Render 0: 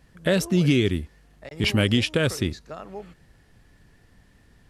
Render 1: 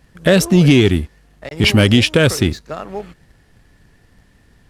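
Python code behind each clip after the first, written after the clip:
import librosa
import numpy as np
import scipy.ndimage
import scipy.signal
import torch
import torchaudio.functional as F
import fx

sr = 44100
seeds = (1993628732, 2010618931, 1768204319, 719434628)

y = fx.leveller(x, sr, passes=1)
y = y * 10.0 ** (6.5 / 20.0)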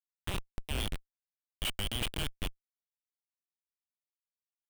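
y = fx.level_steps(x, sr, step_db=15)
y = fx.bandpass_q(y, sr, hz=3100.0, q=5.4)
y = fx.schmitt(y, sr, flips_db=-27.5)
y = y * 10.0 ** (3.0 / 20.0)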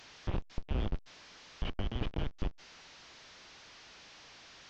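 y = fx.delta_mod(x, sr, bps=32000, step_db=-51.0)
y = y * 10.0 ** (3.0 / 20.0)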